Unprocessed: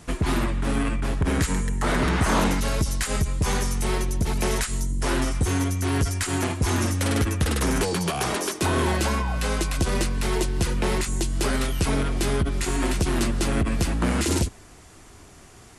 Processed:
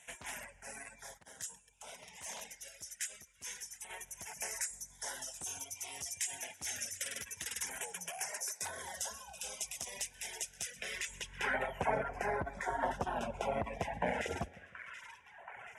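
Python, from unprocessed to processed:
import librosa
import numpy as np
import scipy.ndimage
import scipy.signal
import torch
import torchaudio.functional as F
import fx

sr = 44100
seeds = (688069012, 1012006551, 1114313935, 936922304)

y = fx.high_shelf_res(x, sr, hz=6600.0, db=-6.0, q=1.5)
y = fx.fixed_phaser(y, sr, hz=1200.0, stages=6)
y = fx.echo_split(y, sr, split_hz=840.0, low_ms=155, high_ms=728, feedback_pct=52, wet_db=-11.0)
y = fx.filter_lfo_notch(y, sr, shape='saw_down', hz=0.26, low_hz=620.0, high_hz=5100.0, q=1.3)
y = fx.dereverb_blind(y, sr, rt60_s=1.9)
y = fx.dynamic_eq(y, sr, hz=2600.0, q=1.3, threshold_db=-51.0, ratio=4.0, max_db=-6)
y = 10.0 ** (-20.0 / 20.0) * (np.abs((y / 10.0 ** (-20.0 / 20.0) + 3.0) % 4.0 - 2.0) - 1.0)
y = fx.filter_sweep_bandpass(y, sr, from_hz=6800.0, to_hz=1100.0, start_s=10.74, end_s=11.61, q=1.0)
y = fx.upward_expand(y, sr, threshold_db=-59.0, expansion=1.5, at=(1.17, 3.89), fade=0.02)
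y = y * librosa.db_to_amplitude(6.0)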